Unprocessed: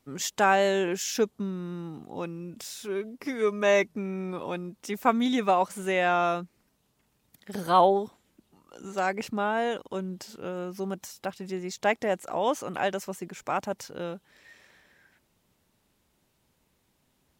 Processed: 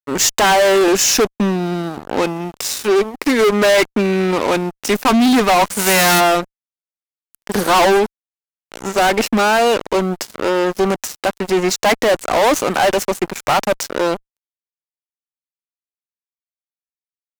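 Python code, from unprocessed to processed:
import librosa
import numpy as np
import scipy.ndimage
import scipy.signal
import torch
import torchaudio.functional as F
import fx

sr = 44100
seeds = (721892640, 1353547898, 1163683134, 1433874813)

y = fx.envelope_flatten(x, sr, power=0.3, at=(5.78, 6.19), fade=0.02)
y = scipy.signal.sosfilt(scipy.signal.butter(4, 200.0, 'highpass', fs=sr, output='sos'), y)
y = fx.notch(y, sr, hz=3300.0, q=10.0)
y = fx.fuzz(y, sr, gain_db=34.0, gate_db=-42.0)
y = F.gain(torch.from_numpy(y), 3.0).numpy()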